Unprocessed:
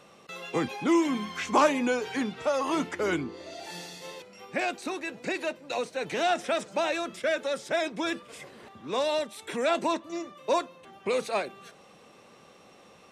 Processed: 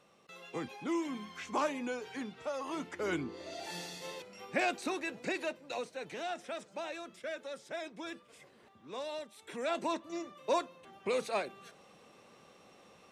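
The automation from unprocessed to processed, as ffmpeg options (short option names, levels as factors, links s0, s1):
-af "volume=2,afade=t=in:st=2.84:d=0.71:silence=0.354813,afade=t=out:st=4.85:d=1.38:silence=0.281838,afade=t=in:st=9.33:d=0.83:silence=0.398107"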